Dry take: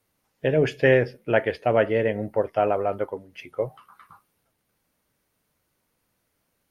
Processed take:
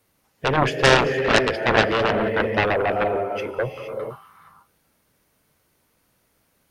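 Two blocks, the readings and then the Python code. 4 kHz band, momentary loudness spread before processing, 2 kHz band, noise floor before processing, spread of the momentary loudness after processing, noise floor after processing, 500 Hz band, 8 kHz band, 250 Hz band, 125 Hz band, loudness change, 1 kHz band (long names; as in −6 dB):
+15.0 dB, 12 LU, +7.5 dB, −75 dBFS, 13 LU, −67 dBFS, +1.0 dB, can't be measured, +3.0 dB, +2.5 dB, +3.0 dB, +7.5 dB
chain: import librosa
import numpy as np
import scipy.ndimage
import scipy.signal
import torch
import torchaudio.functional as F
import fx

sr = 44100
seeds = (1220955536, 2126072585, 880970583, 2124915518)

y = fx.rev_gated(x, sr, seeds[0], gate_ms=490, shape='rising', drr_db=5.5)
y = fx.cheby_harmonics(y, sr, harmonics=(7,), levels_db=(-7,), full_scale_db=-5.0)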